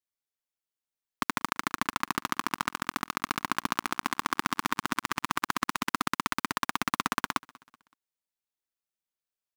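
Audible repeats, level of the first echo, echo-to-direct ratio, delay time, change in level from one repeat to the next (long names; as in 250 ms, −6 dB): 2, −23.5 dB, −22.5 dB, 189 ms, −7.0 dB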